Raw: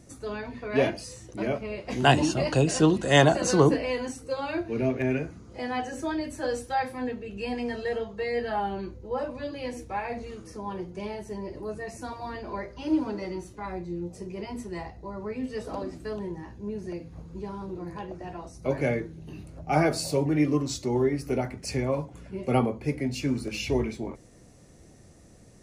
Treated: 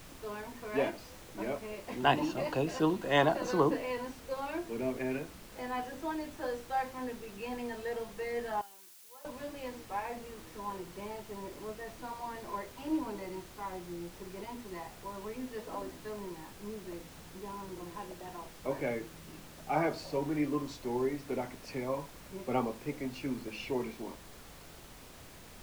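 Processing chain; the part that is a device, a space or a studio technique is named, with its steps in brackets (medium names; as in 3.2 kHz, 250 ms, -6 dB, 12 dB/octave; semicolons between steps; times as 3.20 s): horn gramophone (band-pass 190–3700 Hz; peaking EQ 980 Hz +6.5 dB 0.38 oct; wow and flutter 16 cents; pink noise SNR 15 dB); 8.61–9.25 s: pre-emphasis filter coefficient 0.97; trim -7.5 dB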